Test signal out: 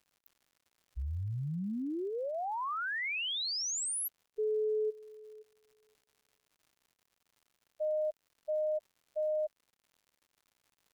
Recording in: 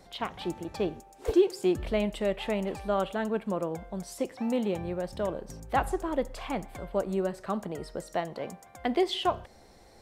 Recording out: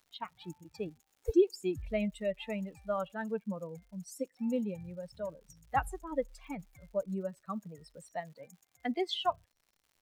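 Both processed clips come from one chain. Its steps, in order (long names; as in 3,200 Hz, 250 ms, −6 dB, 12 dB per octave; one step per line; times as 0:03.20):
spectral dynamics exaggerated over time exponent 2
surface crackle 170 per second −55 dBFS
level −1 dB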